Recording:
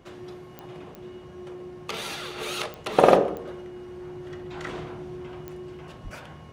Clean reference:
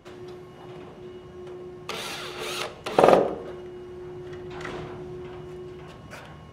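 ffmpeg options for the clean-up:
ffmpeg -i in.wav -filter_complex "[0:a]adeclick=threshold=4,asplit=3[link_01][link_02][link_03];[link_01]afade=type=out:start_time=6.03:duration=0.02[link_04];[link_02]highpass=frequency=140:width=0.5412,highpass=frequency=140:width=1.3066,afade=type=in:start_time=6.03:duration=0.02,afade=type=out:start_time=6.15:duration=0.02[link_05];[link_03]afade=type=in:start_time=6.15:duration=0.02[link_06];[link_04][link_05][link_06]amix=inputs=3:normalize=0" out.wav

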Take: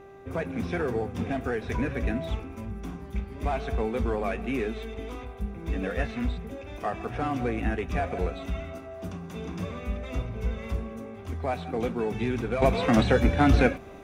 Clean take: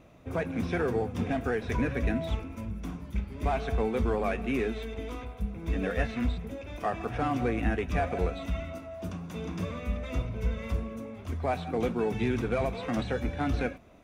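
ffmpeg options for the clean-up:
ffmpeg -i in.wav -af "bandreject=frequency=393.4:width_type=h:width=4,bandreject=frequency=786.8:width_type=h:width=4,bandreject=frequency=1180.2:width_type=h:width=4,bandreject=frequency=1573.6:width_type=h:width=4,bandreject=frequency=1967:width_type=h:width=4,asetnsamples=nb_out_samples=441:pad=0,asendcmd='12.62 volume volume -9.5dB',volume=0dB" out.wav

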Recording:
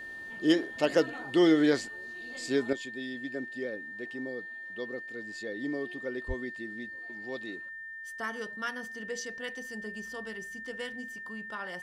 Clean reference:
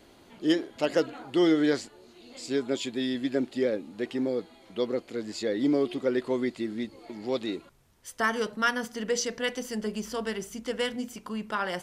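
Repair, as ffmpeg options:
ffmpeg -i in.wav -filter_complex "[0:a]bandreject=frequency=1800:width=30,asplit=3[link_01][link_02][link_03];[link_01]afade=type=out:start_time=6.27:duration=0.02[link_04];[link_02]highpass=frequency=140:width=0.5412,highpass=frequency=140:width=1.3066,afade=type=in:start_time=6.27:duration=0.02,afade=type=out:start_time=6.39:duration=0.02[link_05];[link_03]afade=type=in:start_time=6.39:duration=0.02[link_06];[link_04][link_05][link_06]amix=inputs=3:normalize=0,asetnsamples=nb_out_samples=441:pad=0,asendcmd='2.73 volume volume 10dB',volume=0dB" out.wav

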